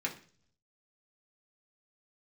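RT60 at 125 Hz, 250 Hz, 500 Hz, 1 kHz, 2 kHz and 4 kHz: 0.95, 0.70, 0.50, 0.40, 0.45, 0.55 s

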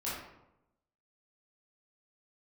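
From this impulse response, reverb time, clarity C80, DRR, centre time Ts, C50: 0.85 s, 4.0 dB, -9.5 dB, 64 ms, 0.0 dB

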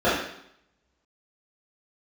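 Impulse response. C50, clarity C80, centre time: 2.0 dB, 6.0 dB, 55 ms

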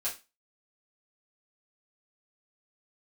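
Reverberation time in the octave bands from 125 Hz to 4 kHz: 0.25, 0.25, 0.25, 0.25, 0.25, 0.25 s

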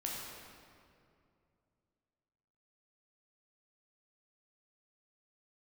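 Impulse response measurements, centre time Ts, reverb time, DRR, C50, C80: 0.119 s, 2.5 s, -3.5 dB, -1.0 dB, 0.5 dB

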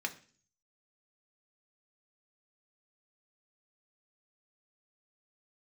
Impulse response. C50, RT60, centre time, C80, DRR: 15.5 dB, 0.45 s, 7 ms, 20.0 dB, 3.5 dB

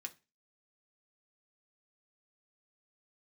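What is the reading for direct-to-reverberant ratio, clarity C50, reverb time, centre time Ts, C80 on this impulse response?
3.0 dB, 19.5 dB, 0.30 s, 5 ms, 26.0 dB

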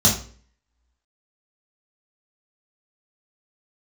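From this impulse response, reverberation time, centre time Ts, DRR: 0.45 s, 26 ms, -5.0 dB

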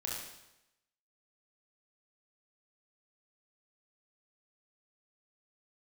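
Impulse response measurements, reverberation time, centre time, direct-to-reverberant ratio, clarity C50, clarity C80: 0.90 s, 67 ms, -4.0 dB, 0.0 dB, 3.5 dB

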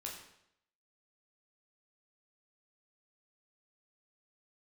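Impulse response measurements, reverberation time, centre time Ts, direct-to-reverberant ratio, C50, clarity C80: 0.75 s, 39 ms, -2.0 dB, 5.0 dB, 7.5 dB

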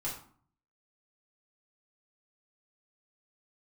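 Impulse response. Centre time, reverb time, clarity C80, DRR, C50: 31 ms, 0.50 s, 10.0 dB, -7.0 dB, 6.0 dB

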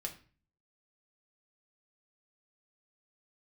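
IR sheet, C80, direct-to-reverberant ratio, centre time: 17.0 dB, 1.5 dB, 11 ms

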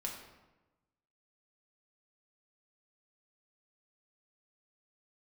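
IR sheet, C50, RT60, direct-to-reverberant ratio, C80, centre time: 4.5 dB, 1.1 s, -1.5 dB, 7.0 dB, 38 ms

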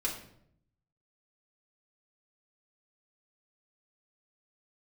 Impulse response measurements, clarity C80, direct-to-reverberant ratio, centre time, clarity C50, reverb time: 10.0 dB, -4.0 dB, 27 ms, 6.5 dB, 0.70 s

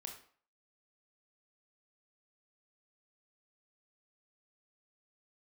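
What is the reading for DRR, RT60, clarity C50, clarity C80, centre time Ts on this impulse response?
2.5 dB, 0.50 s, 7.0 dB, 11.0 dB, 22 ms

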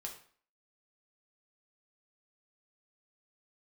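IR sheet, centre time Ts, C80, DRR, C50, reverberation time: 19 ms, 12.0 dB, 0.5 dB, 8.5 dB, 0.50 s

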